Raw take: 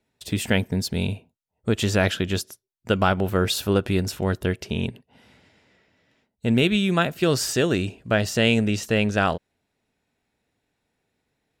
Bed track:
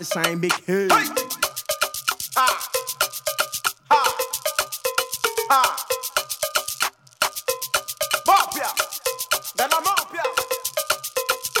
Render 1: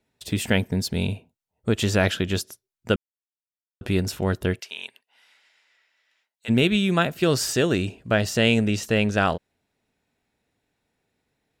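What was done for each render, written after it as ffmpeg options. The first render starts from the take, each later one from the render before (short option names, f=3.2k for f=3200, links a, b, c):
-filter_complex "[0:a]asplit=3[a][b][c];[a]afade=t=out:st=4.59:d=0.02[d];[b]highpass=1.3k,afade=t=in:st=4.59:d=0.02,afade=t=out:st=6.48:d=0.02[e];[c]afade=t=in:st=6.48:d=0.02[f];[d][e][f]amix=inputs=3:normalize=0,asplit=3[g][h][i];[g]atrim=end=2.96,asetpts=PTS-STARTPTS,afade=t=out:st=2.956:d=0.004:c=hsin[j];[h]atrim=start=2.96:end=3.81,asetpts=PTS-STARTPTS,volume=0[k];[i]atrim=start=3.81,asetpts=PTS-STARTPTS,afade=t=in:d=0.004:c=hsin[l];[j][k][l]concat=n=3:v=0:a=1"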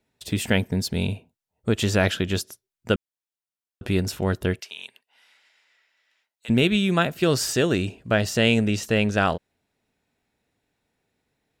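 -filter_complex "[0:a]asettb=1/sr,asplit=3[a][b][c];[a]atrim=end=4.584[d];[b]atrim=start=4.58:end=6.5,asetpts=PTS-STARTPTS,afade=t=in:d=0.004:c=qsin,afade=t=out:st=1.916:d=0.004:c=qsin,acrossover=split=150|3000[e][f][g];[f]acompressor=threshold=-40dB:ratio=6:attack=3.2:release=140:knee=2.83:detection=peak[h];[e][h][g]amix=inputs=3:normalize=0[i];[c]atrim=start=6.496[j];[d][i]acrossfade=d=0.004:c1=hsin:c2=qsin[k];[k][j]acrossfade=d=0.004:c1=qsin:c2=hsin"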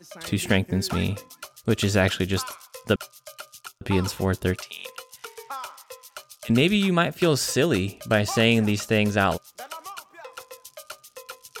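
-filter_complex "[1:a]volume=-18dB[a];[0:a][a]amix=inputs=2:normalize=0"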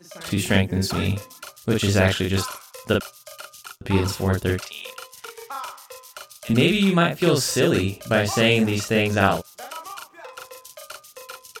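-filter_complex "[0:a]asplit=2[a][b];[b]adelay=41,volume=-2dB[c];[a][c]amix=inputs=2:normalize=0"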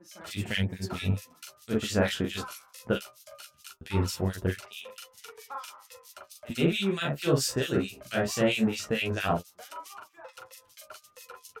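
-filter_complex "[0:a]acrossover=split=1800[a][b];[a]aeval=exprs='val(0)*(1-1/2+1/2*cos(2*PI*4.5*n/s))':c=same[c];[b]aeval=exprs='val(0)*(1-1/2-1/2*cos(2*PI*4.5*n/s))':c=same[d];[c][d]amix=inputs=2:normalize=0,flanger=delay=9.2:depth=5.9:regen=20:speed=0.19:shape=sinusoidal"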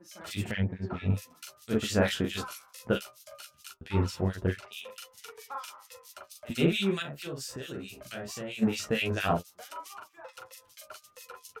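-filter_complex "[0:a]asettb=1/sr,asplit=3[a][b][c];[a]atrim=end=0.514[d];[b]atrim=start=0.51:end=1.1,asetpts=PTS-STARTPTS,afade=t=in:d=0.004:c=qsin,afade=t=out:st=0.586:d=0.004:c=qsin,lowpass=1.7k[e];[c]atrim=start=1.096[f];[d][e]acrossfade=d=0.004:c1=hsin:c2=qsin[g];[g][f]acrossfade=d=0.004:c1=qsin:c2=hsin,asettb=1/sr,asplit=3[h][i][j];[h]atrim=end=3.744[k];[i]atrim=start=3.74:end=4.72,asetpts=PTS-STARTPTS,afade=t=in:d=0.004:c=qsin,afade=t=out:st=0.976:d=0.004:c=qsin,lowpass=f=3.1k:p=1[l];[j]atrim=start=4.716[m];[k][l]acrossfade=d=0.004:c1=hsin:c2=qsin[n];[n][m]acrossfade=d=0.004:c1=qsin:c2=hsin,asplit=3[o][p][q];[o]afade=t=out:st=7.01:d=0.02[r];[p]acompressor=threshold=-39dB:ratio=3:attack=3.2:release=140:knee=1:detection=peak,afade=t=in:st=7.01:d=0.02,afade=t=out:st=8.61:d=0.02[s];[q]afade=t=in:st=8.61:d=0.02[t];[r][s][t]amix=inputs=3:normalize=0"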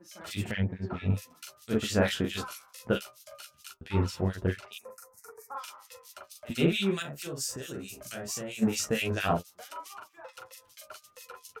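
-filter_complex "[0:a]asplit=3[a][b][c];[a]afade=t=out:st=4.77:d=0.02[d];[b]asuperstop=centerf=3200:order=4:qfactor=0.59,afade=t=in:st=4.77:d=0.02,afade=t=out:st=5.55:d=0.02[e];[c]afade=t=in:st=5.55:d=0.02[f];[d][e][f]amix=inputs=3:normalize=0,asettb=1/sr,asplit=3[g][h][i];[g]atrim=end=6.984[j];[h]atrim=start=6.98:end=9.06,asetpts=PTS-STARTPTS,afade=t=in:d=0.004:c=qsin,afade=t=out:st=2.076:d=0.004:c=qsin,highshelf=f=4.9k:t=q:w=1.5:g=6.5[k];[i]atrim=start=9.056[l];[j][k]acrossfade=d=0.004:c1=hsin:c2=qsin[m];[m][l]acrossfade=d=0.004:c1=qsin:c2=hsin"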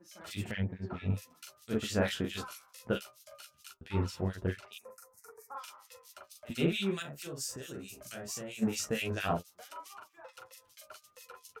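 -af "volume=-4.5dB"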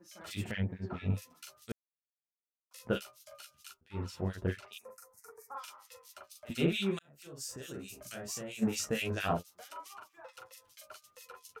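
-filter_complex "[0:a]asplit=5[a][b][c][d][e];[a]atrim=end=1.72,asetpts=PTS-STARTPTS,afade=t=out:st=1.716:d=0.004:c=hsin[f];[b]atrim=start=1.72:end=2.71,asetpts=PTS-STARTPTS,volume=0[g];[c]atrim=start=2.71:end=3.81,asetpts=PTS-STARTPTS,afade=t=in:d=0.004:c=hsin,afade=t=out:st=1.096:d=0.004:c=hsin:silence=0.0707946[h];[d]atrim=start=3.81:end=6.99,asetpts=PTS-STARTPTS,afade=t=in:d=0.7:c=qsin:silence=0.0707946,afade=t=out:st=3.176:d=0.004:c=hsin[i];[e]atrim=start=6.99,asetpts=PTS-STARTPTS,afade=t=in:d=0.71[j];[f][g][h][i][j]concat=n=5:v=0:a=1"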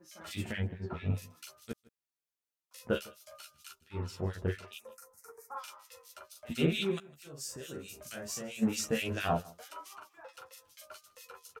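-filter_complex "[0:a]asplit=2[a][b];[b]adelay=13,volume=-7dB[c];[a][c]amix=inputs=2:normalize=0,aecho=1:1:157:0.0708"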